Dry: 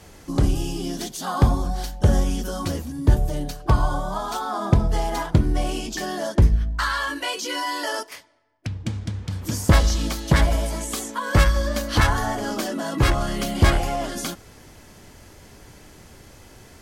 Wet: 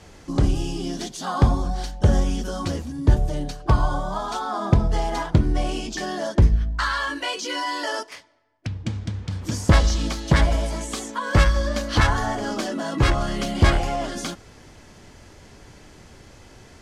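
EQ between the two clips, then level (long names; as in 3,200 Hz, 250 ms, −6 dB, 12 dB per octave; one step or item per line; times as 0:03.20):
low-pass filter 7,500 Hz 12 dB per octave
0.0 dB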